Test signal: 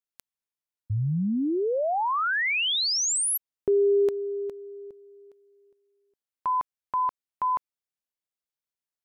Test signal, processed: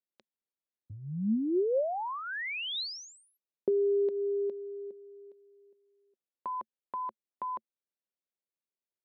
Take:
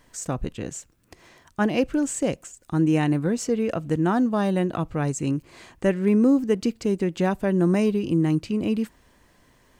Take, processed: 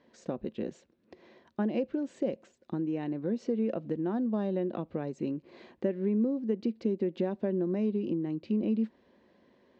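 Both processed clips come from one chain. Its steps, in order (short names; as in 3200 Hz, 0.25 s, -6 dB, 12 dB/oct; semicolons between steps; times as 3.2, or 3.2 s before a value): high shelf 3800 Hz -12 dB; compressor, threshold -26 dBFS; speaker cabinet 120–5300 Hz, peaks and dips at 120 Hz -9 dB, 220 Hz +9 dB, 370 Hz +8 dB, 540 Hz +8 dB, 1300 Hz -5 dB, 3900 Hz +5 dB; gain -6.5 dB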